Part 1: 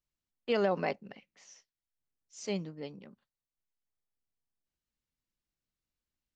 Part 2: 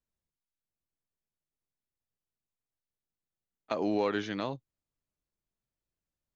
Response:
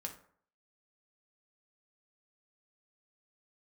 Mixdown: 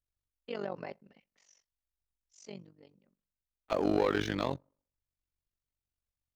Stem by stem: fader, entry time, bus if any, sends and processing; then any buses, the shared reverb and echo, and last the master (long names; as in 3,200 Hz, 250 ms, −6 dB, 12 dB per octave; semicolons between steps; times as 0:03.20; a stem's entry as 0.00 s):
−6.0 dB, 0.00 s, send −22.5 dB, automatic ducking −23 dB, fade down 1.35 s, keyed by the second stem
−1.0 dB, 0.00 s, send −23.5 dB, low shelf with overshoot 110 Hz +9 dB, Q 1.5; leveller curve on the samples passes 2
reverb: on, RT60 0.55 s, pre-delay 3 ms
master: amplitude modulation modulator 47 Hz, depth 80%